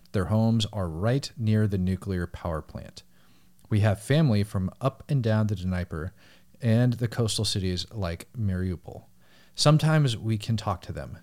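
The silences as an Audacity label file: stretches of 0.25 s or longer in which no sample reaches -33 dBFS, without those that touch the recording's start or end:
2.990000	3.720000	silence
6.080000	6.630000	silence
8.970000	9.580000	silence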